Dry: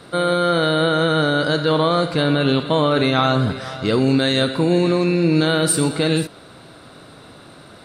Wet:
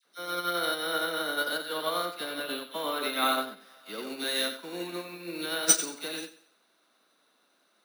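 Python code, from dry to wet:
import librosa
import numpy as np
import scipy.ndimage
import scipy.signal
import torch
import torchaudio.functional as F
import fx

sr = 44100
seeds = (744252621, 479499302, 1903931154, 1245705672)

p1 = scipy.signal.sosfilt(scipy.signal.butter(8, 190.0, 'highpass', fs=sr, output='sos'), x)
p2 = fx.tilt_shelf(p1, sr, db=-5.5, hz=700.0)
p3 = fx.dispersion(p2, sr, late='lows', ms=49.0, hz=1600.0)
p4 = p3 + fx.echo_thinned(p3, sr, ms=92, feedback_pct=41, hz=330.0, wet_db=-4.0, dry=0)
p5 = np.repeat(p4[::3], 3)[:len(p4)]
p6 = fx.upward_expand(p5, sr, threshold_db=-25.0, expansion=2.5)
y = p6 * 10.0 ** (-5.5 / 20.0)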